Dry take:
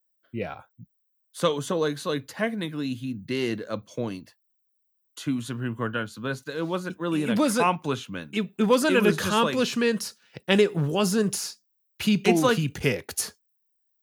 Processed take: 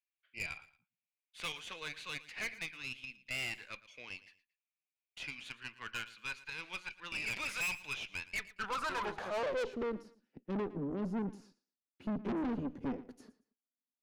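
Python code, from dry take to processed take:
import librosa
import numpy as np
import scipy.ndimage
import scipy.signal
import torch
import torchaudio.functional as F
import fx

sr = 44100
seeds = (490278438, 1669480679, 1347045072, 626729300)

p1 = fx.filter_sweep_bandpass(x, sr, from_hz=2400.0, to_hz=260.0, start_s=8.22, end_s=10.15, q=7.2)
p2 = fx.tilt_shelf(p1, sr, db=-3.0, hz=830.0)
p3 = fx.tube_stage(p2, sr, drive_db=42.0, bias=0.65)
p4 = p3 + fx.echo_feedback(p3, sr, ms=114, feedback_pct=28, wet_db=-18, dry=0)
y = F.gain(torch.from_numpy(p4), 9.0).numpy()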